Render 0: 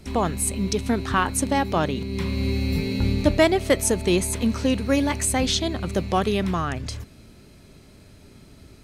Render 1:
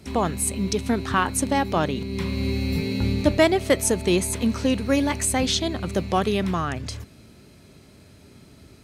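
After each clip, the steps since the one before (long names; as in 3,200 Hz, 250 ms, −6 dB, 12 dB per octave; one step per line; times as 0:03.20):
high-pass filter 66 Hz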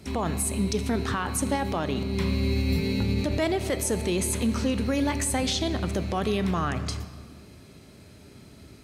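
brickwall limiter −17.5 dBFS, peak gain reduction 11.5 dB
on a send at −11 dB: convolution reverb RT60 1.8 s, pre-delay 8 ms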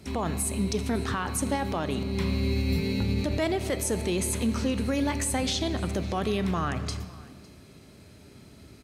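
single-tap delay 556 ms −23 dB
level −1.5 dB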